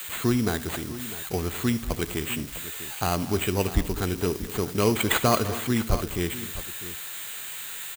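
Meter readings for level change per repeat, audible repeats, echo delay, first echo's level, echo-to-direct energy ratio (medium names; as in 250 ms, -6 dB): no regular repeats, 4, 74 ms, -18.5 dB, -11.0 dB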